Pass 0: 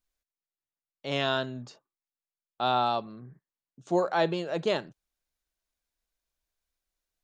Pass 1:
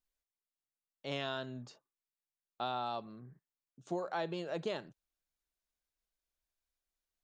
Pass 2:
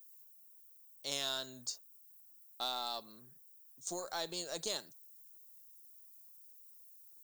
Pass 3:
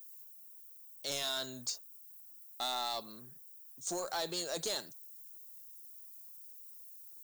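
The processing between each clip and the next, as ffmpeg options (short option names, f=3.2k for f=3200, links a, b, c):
-af "acompressor=threshold=-27dB:ratio=6,volume=-6dB"
-af "aemphasis=mode=production:type=bsi,aeval=exprs='0.075*(cos(1*acos(clip(val(0)/0.075,-1,1)))-cos(1*PI/2))+0.00188*(cos(6*acos(clip(val(0)/0.075,-1,1)))-cos(6*PI/2))':c=same,aexciter=amount=4.4:drive=8.2:freq=4k,volume=-4dB"
-af "asoftclip=type=tanh:threshold=-35.5dB,volume=6dB"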